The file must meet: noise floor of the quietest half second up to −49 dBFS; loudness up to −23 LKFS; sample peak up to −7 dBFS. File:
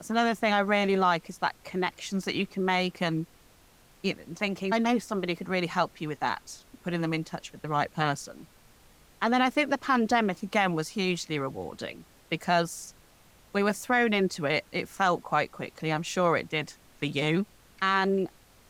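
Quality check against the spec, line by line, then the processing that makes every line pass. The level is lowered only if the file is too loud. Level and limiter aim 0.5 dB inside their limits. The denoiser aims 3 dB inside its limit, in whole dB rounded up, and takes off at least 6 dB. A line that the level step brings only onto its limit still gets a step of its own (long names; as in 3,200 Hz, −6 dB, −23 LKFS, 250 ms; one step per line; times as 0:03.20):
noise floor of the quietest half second −58 dBFS: in spec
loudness −28.5 LKFS: in spec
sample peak −9.0 dBFS: in spec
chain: no processing needed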